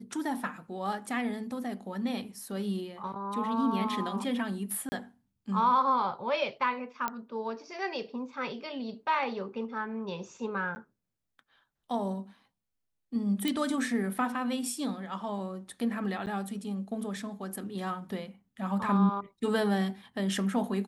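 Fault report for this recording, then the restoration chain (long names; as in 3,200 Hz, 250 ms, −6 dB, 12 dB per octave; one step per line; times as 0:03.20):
0:04.89–0:04.92: drop-out 30 ms
0:07.08: click −16 dBFS
0:10.75–0:10.76: drop-out 10 ms
0:13.48: click −16 dBFS
0:16.26–0:16.27: drop-out 9.1 ms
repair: click removal
repair the gap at 0:04.89, 30 ms
repair the gap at 0:10.75, 10 ms
repair the gap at 0:16.26, 9.1 ms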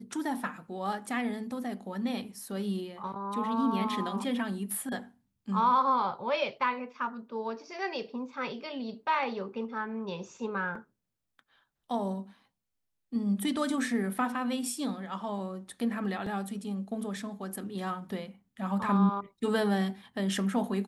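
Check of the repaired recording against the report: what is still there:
none of them is left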